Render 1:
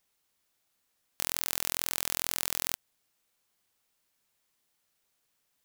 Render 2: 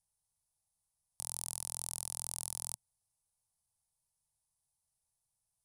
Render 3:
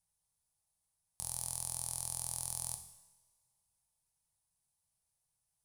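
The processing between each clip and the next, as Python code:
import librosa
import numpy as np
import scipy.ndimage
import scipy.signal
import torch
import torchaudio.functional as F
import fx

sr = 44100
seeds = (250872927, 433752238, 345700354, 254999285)

y1 = fx.curve_eq(x, sr, hz=(120.0, 180.0, 280.0, 890.0, 1500.0, 2900.0, 5000.0, 7200.0, 10000.0, 15000.0), db=(0, -8, -27, -8, -27, -23, -12, -10, 0, -26))
y1 = y1 * librosa.db_to_amplitude(1.0)
y2 = fx.rev_double_slope(y1, sr, seeds[0], early_s=0.93, late_s=2.7, knee_db=-22, drr_db=6.0)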